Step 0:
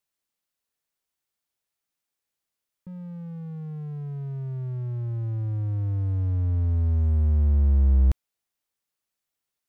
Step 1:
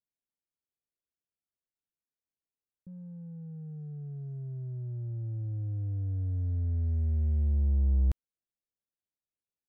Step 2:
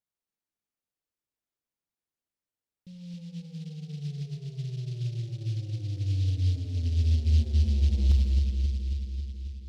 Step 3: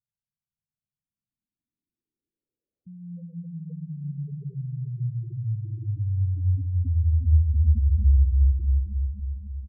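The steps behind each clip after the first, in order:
Wiener smoothing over 41 samples; gain -6.5 dB
analogue delay 0.271 s, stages 1024, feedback 68%, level -4 dB; reverb RT60 1.7 s, pre-delay 28 ms, DRR 3.5 dB; noise-modulated delay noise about 3700 Hz, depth 0.089 ms
low-pass sweep 140 Hz -> 1100 Hz, 0.8–3.88; feedback echo 0.359 s, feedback 41%, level -5 dB; spectral gate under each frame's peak -15 dB strong; gain +2 dB

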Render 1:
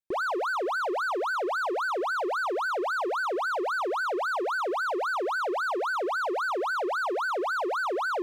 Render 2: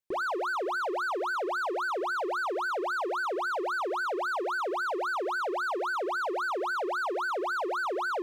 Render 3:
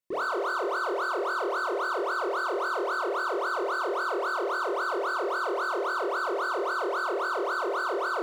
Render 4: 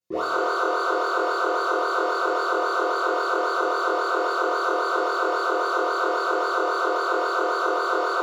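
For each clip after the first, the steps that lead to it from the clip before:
notches 60/120/180/240/300/360 Hz; in parallel at +0.5 dB: limiter -32 dBFS, peak gain reduction 10 dB; on the sum: gain -5 dB
notch comb 820 Hz; on a send: flutter echo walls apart 4.3 m, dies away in 0.51 s
reverb RT60 1.1 s, pre-delay 3 ms, DRR -9.5 dB; gain -4 dB

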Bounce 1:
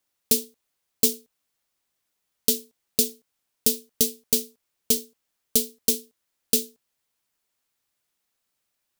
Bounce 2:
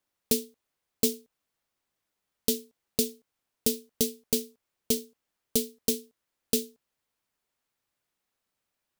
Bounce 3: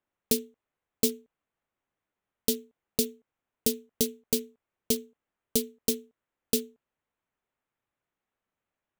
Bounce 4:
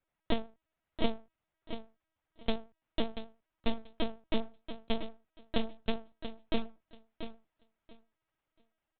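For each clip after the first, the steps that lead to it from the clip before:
high shelf 2900 Hz -7.5 dB
Wiener smoothing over 9 samples
minimum comb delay 3.1 ms; LPC vocoder at 8 kHz pitch kept; feedback echo 0.685 s, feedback 18%, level -10 dB; gain +3 dB

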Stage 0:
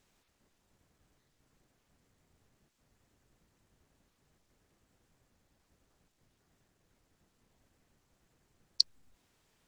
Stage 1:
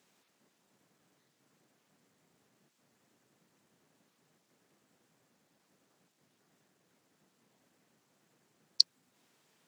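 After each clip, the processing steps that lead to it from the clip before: HPF 150 Hz 24 dB/oct; gain +2.5 dB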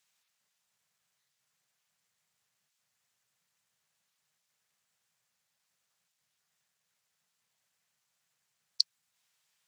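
passive tone stack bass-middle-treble 10-0-10; gain -2 dB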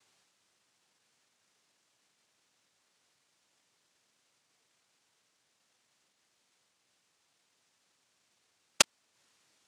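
noise vocoder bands 1; gain +4 dB

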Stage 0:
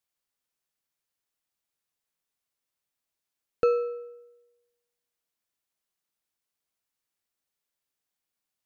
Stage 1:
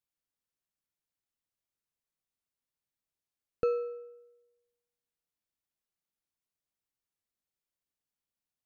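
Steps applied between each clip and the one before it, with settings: low shelf 330 Hz +8.5 dB; gain -8.5 dB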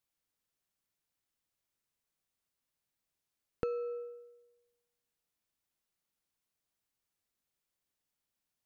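compressor 6:1, threshold -37 dBFS, peak gain reduction 11.5 dB; gain +4 dB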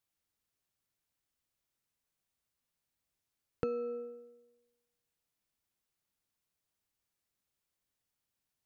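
octaver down 1 oct, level -2 dB

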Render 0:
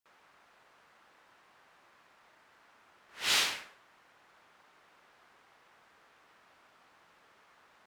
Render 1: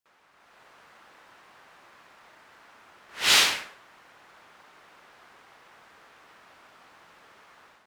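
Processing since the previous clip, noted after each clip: AGC gain up to 9 dB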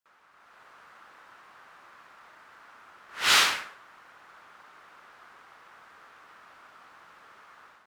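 bell 1300 Hz +7.5 dB 0.92 oct; gain -3 dB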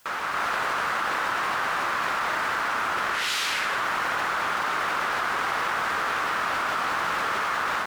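fast leveller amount 100%; gain -8 dB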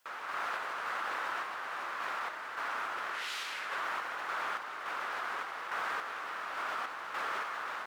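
tone controls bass -12 dB, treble -4 dB; random-step tremolo; gain -8.5 dB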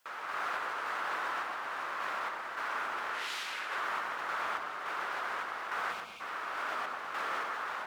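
spectral delete 5.93–6.21, 250–2100 Hz; darkening echo 0.12 s, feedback 52%, low-pass 1200 Hz, level -3 dB

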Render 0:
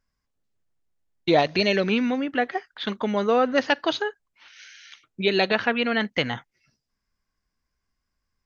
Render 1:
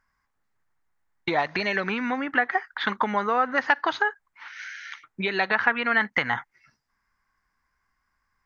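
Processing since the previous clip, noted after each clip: compressor 4:1, threshold -27 dBFS, peak gain reduction 11 dB; band shelf 1300 Hz +12.5 dB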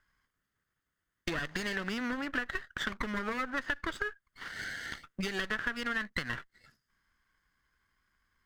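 minimum comb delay 0.62 ms; compressor 3:1, threshold -34 dBFS, peak gain reduction 14 dB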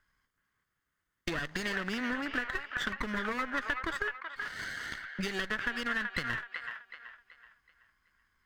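band-limited delay 0.378 s, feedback 37%, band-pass 1500 Hz, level -4 dB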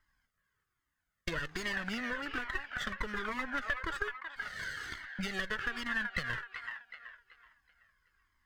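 in parallel at -9.5 dB: one-sided clip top -38 dBFS; on the sum: cascading flanger falling 1.2 Hz

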